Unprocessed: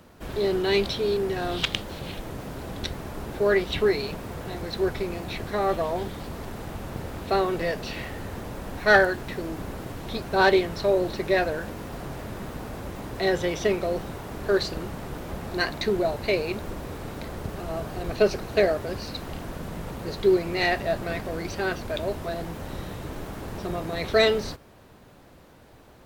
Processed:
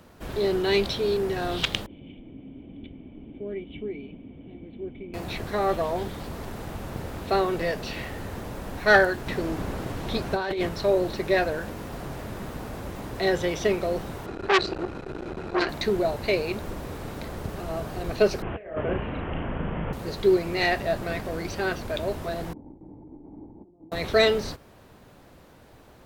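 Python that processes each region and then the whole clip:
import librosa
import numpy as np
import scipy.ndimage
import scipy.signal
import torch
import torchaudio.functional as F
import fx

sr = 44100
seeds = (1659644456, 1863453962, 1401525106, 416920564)

y = fx.chain(x, sr, fx.formant_cascade(vowel='i'),
    fx.peak_eq(hz=720.0, db=7.0, octaves=1.2), at=(1.86, 5.14))
y = fx.chain(y, sr, fx.over_compress(threshold_db=-25.0, ratio=-1.0),
    fx.high_shelf(hz=9600.0, db=-5.5), at=(9.26, 10.69))
y = fx.chain(y, sr, fx.air_absorb(metres=79.0),
    fx.small_body(hz=(360.0, 1400.0, 2500.0, 4000.0), ring_ms=35, db=12),
    fx.transformer_sat(knee_hz=2400.0), at=(14.26, 15.69))
y = fx.chain(y, sr, fx.steep_lowpass(hz=3200.0, slope=96),
    fx.doubler(ms=37.0, db=-4),
    fx.over_compress(threshold_db=-27.0, ratio=-0.5), at=(18.42, 19.93))
y = fx.chain(y, sr, fx.over_compress(threshold_db=-36.0, ratio=-0.5),
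    fx.formant_cascade(vowel='u'), at=(22.53, 23.92))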